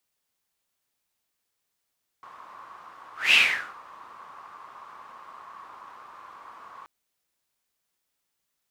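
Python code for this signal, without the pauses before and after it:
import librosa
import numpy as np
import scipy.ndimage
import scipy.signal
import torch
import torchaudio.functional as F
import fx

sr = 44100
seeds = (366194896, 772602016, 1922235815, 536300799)

y = fx.whoosh(sr, seeds[0], length_s=4.63, peak_s=1.1, rise_s=0.2, fall_s=0.49, ends_hz=1100.0, peak_hz=2700.0, q=7.4, swell_db=28.5)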